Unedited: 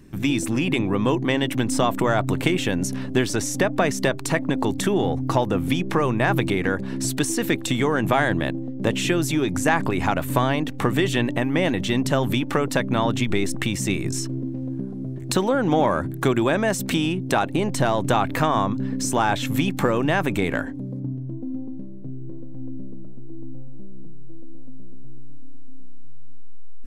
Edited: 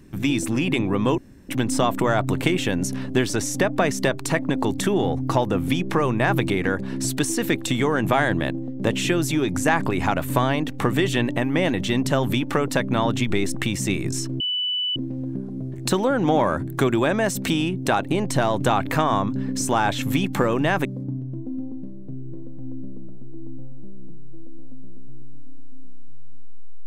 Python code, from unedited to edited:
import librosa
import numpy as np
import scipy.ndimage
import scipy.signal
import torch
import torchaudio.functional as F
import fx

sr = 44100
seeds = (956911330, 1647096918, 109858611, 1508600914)

y = fx.edit(x, sr, fx.room_tone_fill(start_s=1.18, length_s=0.31),
    fx.insert_tone(at_s=14.4, length_s=0.56, hz=2980.0, db=-21.5),
    fx.cut(start_s=20.29, length_s=0.52), tone=tone)